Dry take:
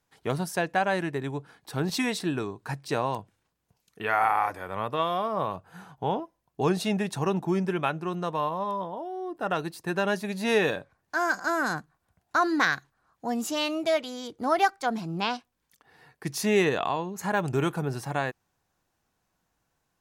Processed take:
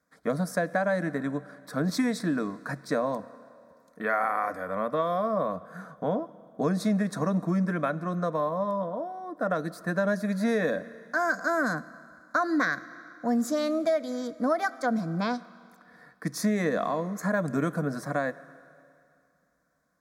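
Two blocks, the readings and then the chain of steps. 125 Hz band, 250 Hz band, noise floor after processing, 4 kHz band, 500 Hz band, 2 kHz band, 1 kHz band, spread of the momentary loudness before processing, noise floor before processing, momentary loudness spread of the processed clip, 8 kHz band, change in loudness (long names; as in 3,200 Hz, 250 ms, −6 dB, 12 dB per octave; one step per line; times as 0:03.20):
0.0 dB, +2.5 dB, −66 dBFS, −8.0 dB, +0.5 dB, −1.5 dB, −3.0 dB, 11 LU, −77 dBFS, 9 LU, −3.5 dB, −0.5 dB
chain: high-pass filter 77 Hz
high-shelf EQ 4,600 Hz −10.5 dB
phaser with its sweep stopped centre 570 Hz, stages 8
four-comb reverb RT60 2.4 s, combs from 26 ms, DRR 19 dB
dynamic equaliser 1,300 Hz, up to −5 dB, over −42 dBFS, Q 1.7
downward compressor, threshold −28 dBFS, peak gain reduction 6 dB
level +6.5 dB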